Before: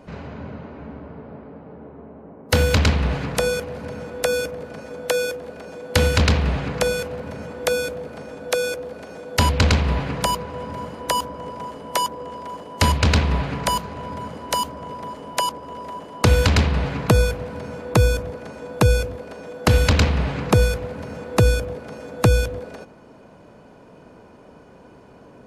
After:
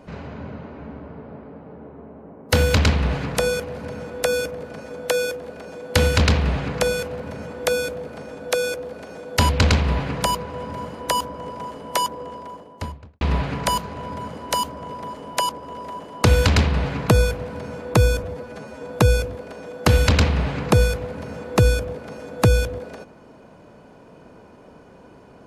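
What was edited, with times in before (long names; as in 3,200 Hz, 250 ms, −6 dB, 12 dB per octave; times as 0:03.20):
0:12.12–0:13.21: fade out and dull
0:18.24–0:18.63: time-stretch 1.5×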